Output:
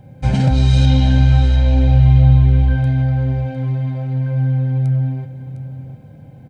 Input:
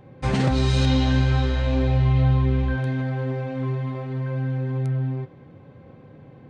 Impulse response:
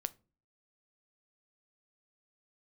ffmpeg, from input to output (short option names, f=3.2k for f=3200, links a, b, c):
-filter_complex "[0:a]equalizer=f=1.2k:w=1.1:g=-5,bandreject=f=1.1k:w=17,acrusher=bits=11:mix=0:aa=0.000001,lowshelf=f=450:g=5.5,aecho=1:1:1.3:0.63,asplit=2[a][b];[b]aecho=0:1:706:0.224[c];[a][c]amix=inputs=2:normalize=0"